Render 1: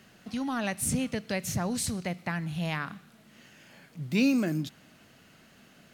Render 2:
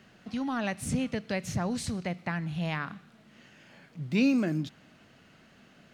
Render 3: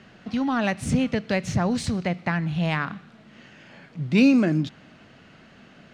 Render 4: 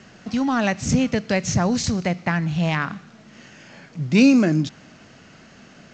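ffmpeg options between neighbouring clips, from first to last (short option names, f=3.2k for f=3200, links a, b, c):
-af "equalizer=f=14k:t=o:w=1.2:g=-15"
-af "adynamicsmooth=sensitivity=4:basefreq=6.8k,volume=7.5dB"
-af "aexciter=amount=2.4:drive=7.7:freq=5k,volume=3dB" -ar 16000 -c:a g722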